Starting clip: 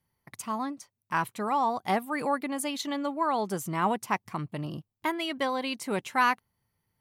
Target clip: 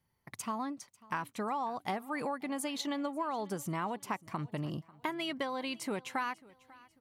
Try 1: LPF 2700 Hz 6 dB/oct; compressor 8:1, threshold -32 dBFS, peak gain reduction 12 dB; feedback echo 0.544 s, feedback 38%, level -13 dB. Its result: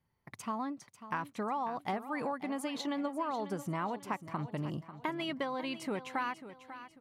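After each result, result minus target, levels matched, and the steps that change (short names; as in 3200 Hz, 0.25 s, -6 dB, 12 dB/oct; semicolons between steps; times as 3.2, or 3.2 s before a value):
echo-to-direct +9.5 dB; 8000 Hz band -6.0 dB
change: feedback echo 0.544 s, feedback 38%, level -22.5 dB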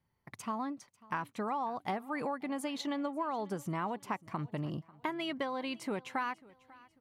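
8000 Hz band -6.5 dB
change: LPF 8800 Hz 6 dB/oct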